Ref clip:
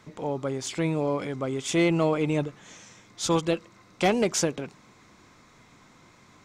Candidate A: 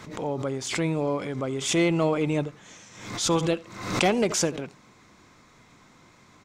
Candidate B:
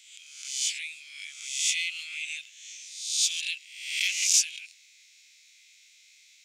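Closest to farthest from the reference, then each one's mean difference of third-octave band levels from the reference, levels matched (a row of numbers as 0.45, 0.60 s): A, B; 2.5, 19.0 dB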